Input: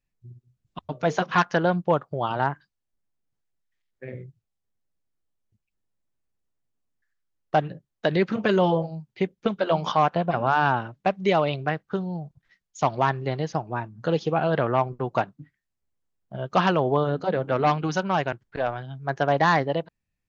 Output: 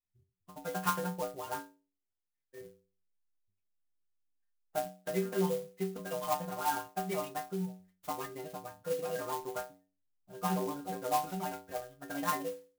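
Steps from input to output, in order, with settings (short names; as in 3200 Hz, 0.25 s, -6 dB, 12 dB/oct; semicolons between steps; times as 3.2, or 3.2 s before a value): metallic resonator 91 Hz, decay 0.75 s, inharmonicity 0.008; time stretch by phase-locked vocoder 0.63×; clock jitter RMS 0.056 ms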